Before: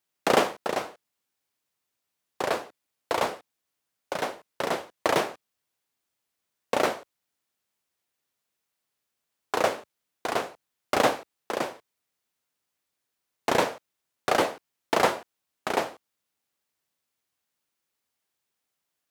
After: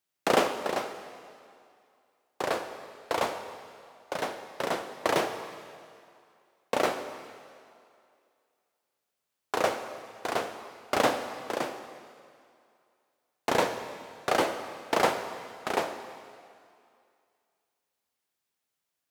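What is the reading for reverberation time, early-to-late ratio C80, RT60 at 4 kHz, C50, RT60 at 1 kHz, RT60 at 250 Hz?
2.4 s, 10.0 dB, 2.2 s, 9.0 dB, 2.5 s, 2.2 s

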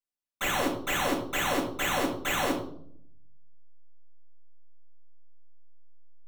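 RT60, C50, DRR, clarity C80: 0.65 s, 7.5 dB, -2.5 dB, 11.5 dB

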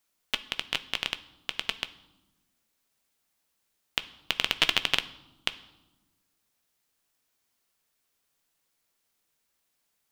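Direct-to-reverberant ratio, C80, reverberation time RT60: 11.0 dB, 19.5 dB, 1.1 s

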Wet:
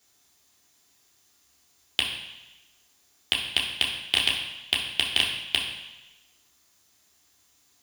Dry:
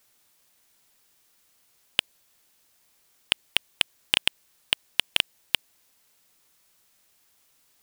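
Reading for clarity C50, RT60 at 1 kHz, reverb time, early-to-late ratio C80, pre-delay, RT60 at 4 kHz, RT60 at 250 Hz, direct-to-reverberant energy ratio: 4.5 dB, 1.1 s, 1.0 s, 6.5 dB, 3 ms, 1.1 s, 1.0 s, -4.0 dB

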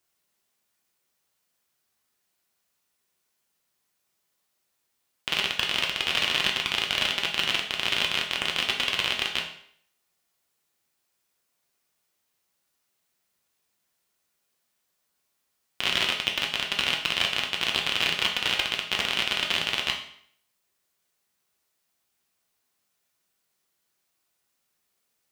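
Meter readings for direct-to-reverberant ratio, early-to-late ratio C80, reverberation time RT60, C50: 0.0 dB, 11.0 dB, 0.60 s, 7.5 dB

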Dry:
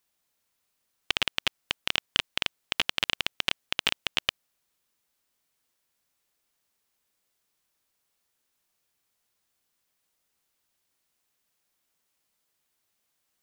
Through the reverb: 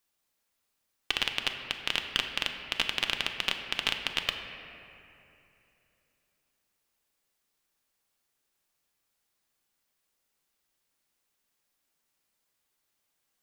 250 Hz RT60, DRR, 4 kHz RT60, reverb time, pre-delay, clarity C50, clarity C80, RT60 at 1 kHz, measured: 3.2 s, 4.0 dB, 1.9 s, 2.9 s, 3 ms, 6.0 dB, 7.0 dB, 2.7 s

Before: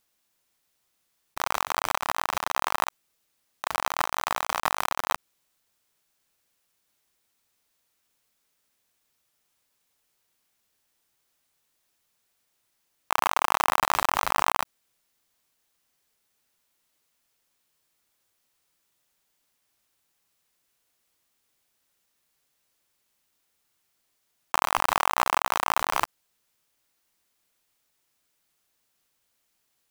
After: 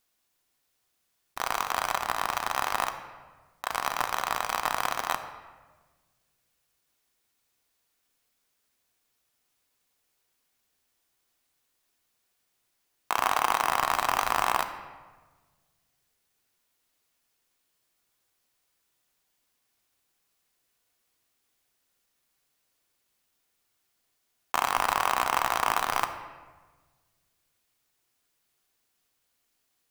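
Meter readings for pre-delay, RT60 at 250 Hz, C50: 3 ms, 1.7 s, 9.5 dB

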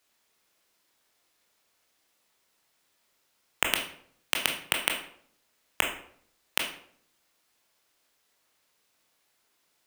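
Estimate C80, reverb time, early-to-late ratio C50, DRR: 11.0 dB, 0.60 s, 7.0 dB, 1.5 dB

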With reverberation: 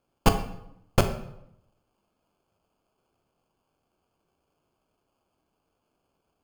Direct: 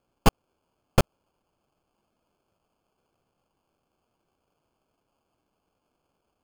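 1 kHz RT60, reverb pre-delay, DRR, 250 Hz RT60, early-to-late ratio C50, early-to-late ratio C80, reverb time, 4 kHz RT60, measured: 0.75 s, 10 ms, 7.0 dB, 0.95 s, 10.0 dB, 12.5 dB, 0.80 s, 0.60 s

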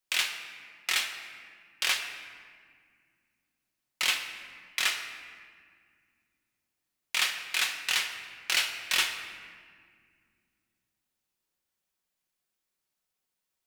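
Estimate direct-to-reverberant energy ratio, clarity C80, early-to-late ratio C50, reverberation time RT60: 2.5 dB, 8.5 dB, 7.0 dB, 2.0 s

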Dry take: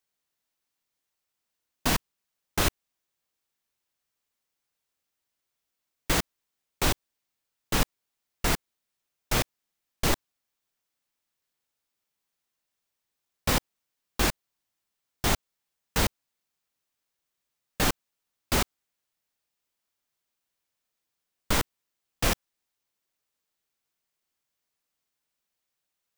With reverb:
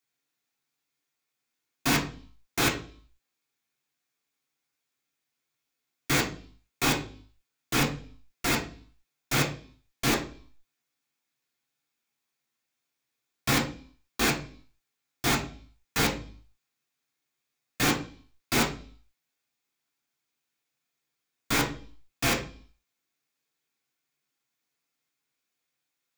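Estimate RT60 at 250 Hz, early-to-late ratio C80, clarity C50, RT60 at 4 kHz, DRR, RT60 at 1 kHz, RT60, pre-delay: 0.60 s, 15.0 dB, 10.0 dB, 0.55 s, -3.0 dB, 0.40 s, 0.45 s, 3 ms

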